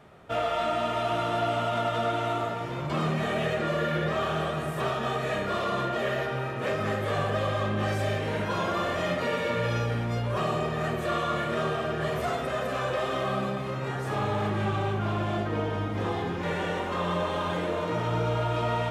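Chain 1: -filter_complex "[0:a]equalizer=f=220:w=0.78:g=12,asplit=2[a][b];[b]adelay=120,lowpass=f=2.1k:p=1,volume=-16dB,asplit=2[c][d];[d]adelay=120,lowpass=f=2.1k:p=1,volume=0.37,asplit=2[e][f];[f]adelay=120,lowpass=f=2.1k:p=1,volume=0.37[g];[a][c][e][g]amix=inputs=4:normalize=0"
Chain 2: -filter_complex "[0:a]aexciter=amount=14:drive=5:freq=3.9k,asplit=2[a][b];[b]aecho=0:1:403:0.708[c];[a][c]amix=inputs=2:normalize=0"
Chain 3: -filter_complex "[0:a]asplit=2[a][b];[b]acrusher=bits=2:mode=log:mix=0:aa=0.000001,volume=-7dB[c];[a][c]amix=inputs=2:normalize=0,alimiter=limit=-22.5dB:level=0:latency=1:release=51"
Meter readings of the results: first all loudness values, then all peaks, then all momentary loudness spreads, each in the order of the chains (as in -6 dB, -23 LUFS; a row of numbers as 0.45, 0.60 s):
-23.5, -23.0, -30.5 LUFS; -9.0, -9.0, -22.5 dBFS; 4, 3, 1 LU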